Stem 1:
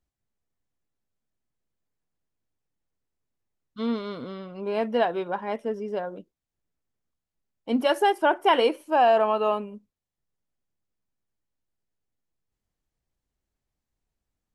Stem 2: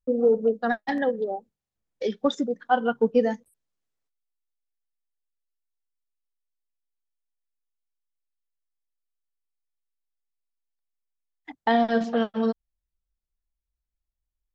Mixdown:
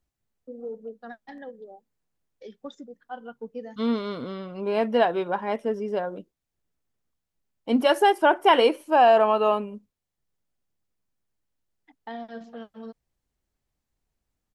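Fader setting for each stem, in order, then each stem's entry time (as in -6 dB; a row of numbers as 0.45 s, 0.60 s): +2.5 dB, -16.0 dB; 0.00 s, 0.40 s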